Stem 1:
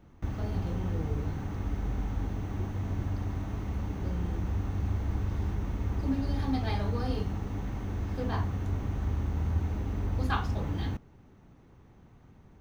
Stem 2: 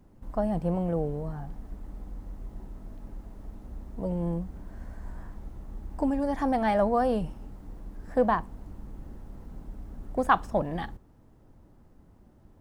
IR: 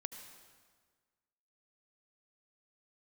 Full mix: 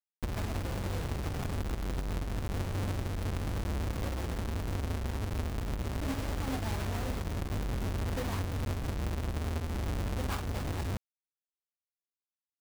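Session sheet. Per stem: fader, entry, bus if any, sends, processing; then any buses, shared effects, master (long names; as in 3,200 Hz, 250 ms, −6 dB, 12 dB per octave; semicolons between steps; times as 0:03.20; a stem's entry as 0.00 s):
−3.5 dB, 0.00 s, no send, each half-wave held at its own peak
−7.5 dB, 0.8 ms, no send, downward compressor 2 to 1, threshold −28 dBFS, peak gain reduction 7.5 dB; flanger 1.3 Hz, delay 2.2 ms, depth 3.4 ms, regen +75%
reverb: not used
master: bit reduction 6 bits; downward compressor, threshold −31 dBFS, peak gain reduction 8.5 dB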